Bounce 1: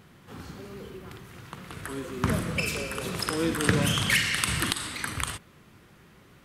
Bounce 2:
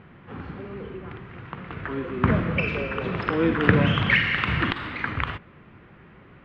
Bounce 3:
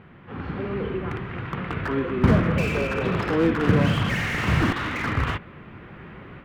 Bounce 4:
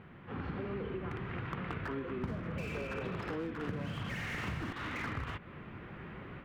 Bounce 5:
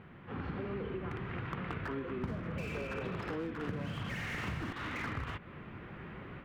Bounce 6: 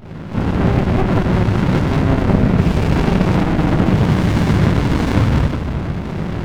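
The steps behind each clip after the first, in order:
low-pass 2.6 kHz 24 dB/octave; trim +5.5 dB
level rider gain up to 8.5 dB; slew-rate limiter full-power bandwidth 91 Hz
compression 10:1, threshold -30 dBFS, peak gain reduction 18 dB; trim -5 dB
no audible change
reverberation RT60 1.7 s, pre-delay 3 ms, DRR -17.5 dB; sliding maximum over 65 samples; trim +4 dB

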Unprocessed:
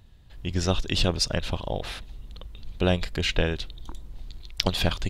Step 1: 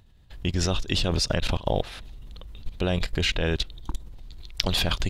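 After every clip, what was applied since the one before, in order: level held to a coarse grid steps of 16 dB; trim +8.5 dB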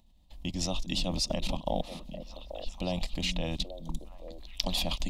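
static phaser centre 410 Hz, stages 6; repeats whose band climbs or falls 416 ms, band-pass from 180 Hz, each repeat 1.4 oct, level -4.5 dB; trim -3.5 dB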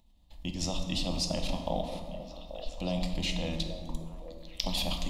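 plate-style reverb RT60 1.9 s, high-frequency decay 0.5×, DRR 3.5 dB; trim -2 dB

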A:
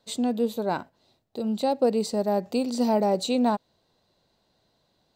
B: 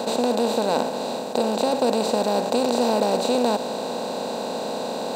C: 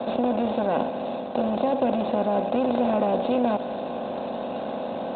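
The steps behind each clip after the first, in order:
spectral levelling over time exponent 0.2; bass shelf 110 Hz -5.5 dB; trim -3.5 dB
comb of notches 450 Hz; AMR-NB 12.2 kbps 8 kHz

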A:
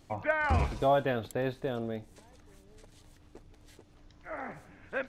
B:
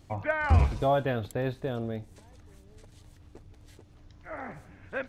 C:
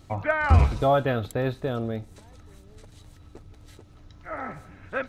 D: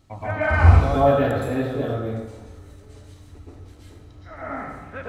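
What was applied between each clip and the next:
peaking EQ 80 Hz +8 dB 1.8 oct
small resonant body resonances 1.3/3.9 kHz, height 13 dB, ringing for 90 ms; trim +4 dB
feedback comb 55 Hz, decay 1.5 s, harmonics all; plate-style reverb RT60 1 s, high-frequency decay 0.65×, pre-delay 105 ms, DRR -9 dB

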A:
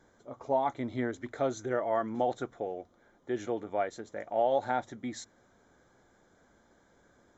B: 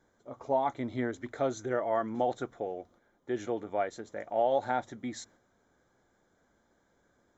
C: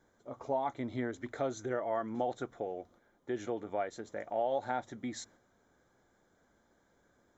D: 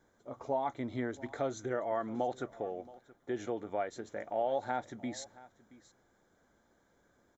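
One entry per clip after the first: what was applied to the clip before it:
gate -59 dBFS, range -6 dB
compression 1.5:1, threshold -37 dBFS, peak gain reduction 5.5 dB
delay 675 ms -20 dB

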